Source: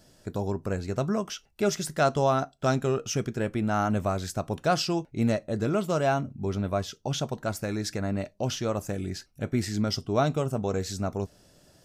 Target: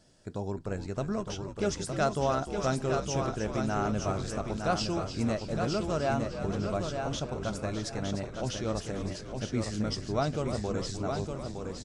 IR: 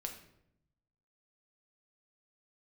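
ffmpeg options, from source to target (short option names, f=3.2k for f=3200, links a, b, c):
-filter_complex "[0:a]asplit=2[a][b];[b]aecho=0:1:912|1824|2736:0.531|0.127|0.0306[c];[a][c]amix=inputs=2:normalize=0,aresample=22050,aresample=44100,asplit=2[d][e];[e]asplit=8[f][g][h][i][j][k][l][m];[f]adelay=302,afreqshift=-78,volume=-10dB[n];[g]adelay=604,afreqshift=-156,volume=-14dB[o];[h]adelay=906,afreqshift=-234,volume=-18dB[p];[i]adelay=1208,afreqshift=-312,volume=-22dB[q];[j]adelay=1510,afreqshift=-390,volume=-26.1dB[r];[k]adelay=1812,afreqshift=-468,volume=-30.1dB[s];[l]adelay=2114,afreqshift=-546,volume=-34.1dB[t];[m]adelay=2416,afreqshift=-624,volume=-38.1dB[u];[n][o][p][q][r][s][t][u]amix=inputs=8:normalize=0[v];[d][v]amix=inputs=2:normalize=0,volume=-5dB"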